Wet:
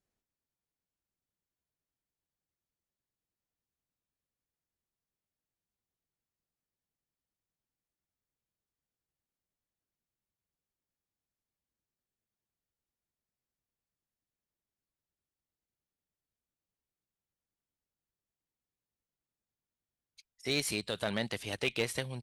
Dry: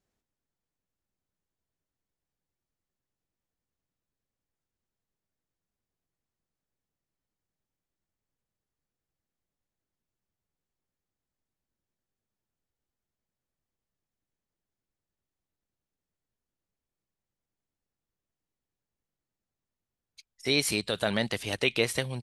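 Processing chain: one-sided clip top -22.5 dBFS; trim -5.5 dB

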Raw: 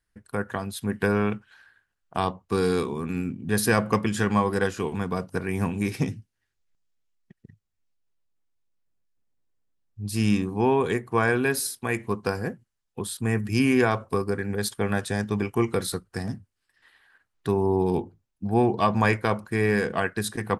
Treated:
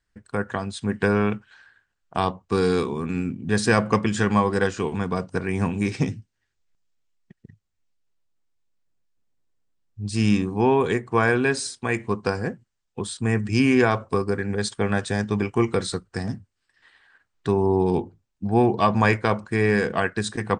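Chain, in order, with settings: steep low-pass 8.8 kHz 72 dB/octave; trim +2.5 dB

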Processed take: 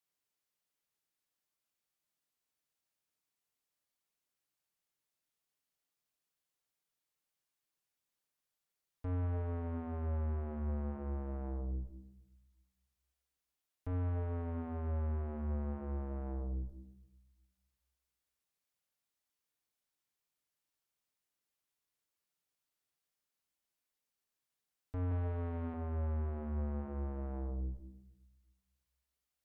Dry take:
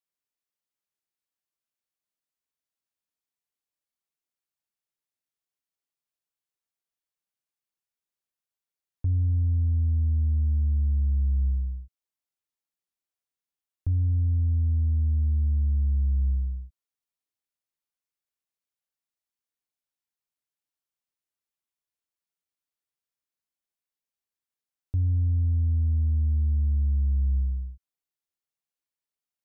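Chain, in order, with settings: 25.11–25.74 s: small resonant body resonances 220/330 Hz, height 7 dB, ringing for 30 ms; valve stage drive 39 dB, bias 0.3; simulated room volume 350 m³, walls mixed, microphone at 0.44 m; trim +3 dB

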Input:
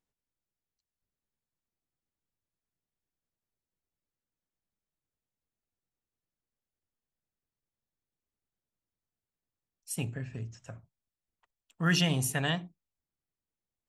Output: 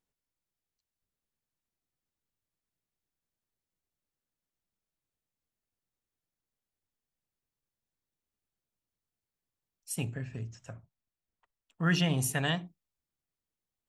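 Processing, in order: 10.73–12.18 s: treble shelf 4.2 kHz -10 dB

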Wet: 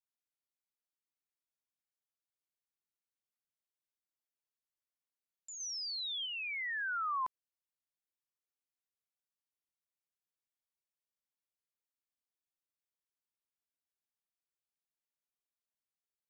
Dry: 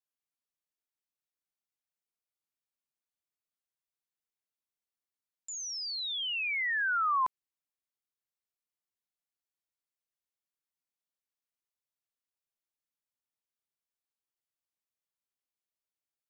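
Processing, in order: 5.60–6.26 s: treble shelf 3.3 kHz +6 dB; trim -7 dB

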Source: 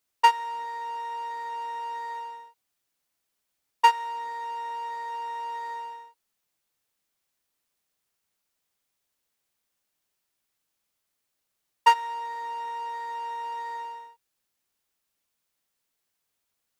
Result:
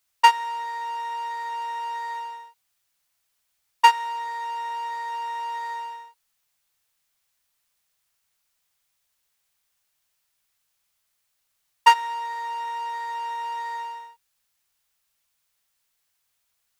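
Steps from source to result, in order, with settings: peaking EQ 310 Hz -12 dB 1.8 oct; trim +6 dB

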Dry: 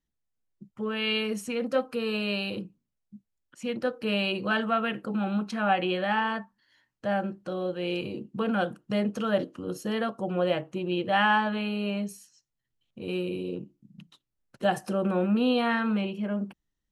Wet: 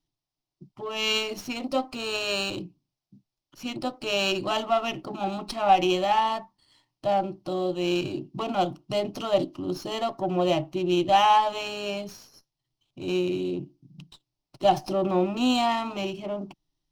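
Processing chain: resonant high shelf 6.4 kHz -6.5 dB, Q 3; static phaser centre 320 Hz, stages 8; sliding maximum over 3 samples; trim +7 dB

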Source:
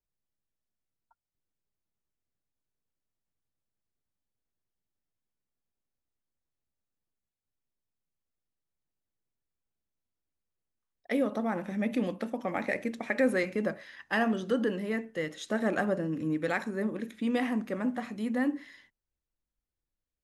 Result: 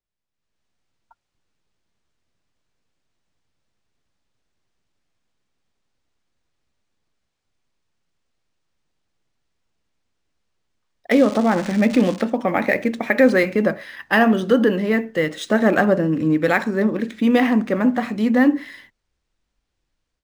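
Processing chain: 11.11–12.21 s: zero-crossing glitches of -35.5 dBFS; level rider gain up to 14 dB; decimation joined by straight lines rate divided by 3×

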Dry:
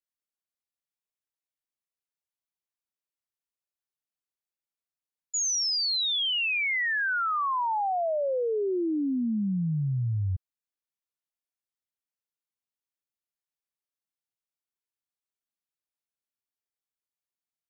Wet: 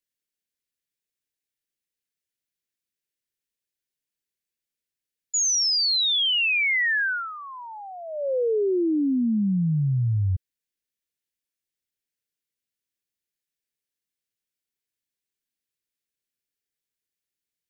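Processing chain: high-order bell 910 Hz -16 dB 1.2 oct; trim +5 dB

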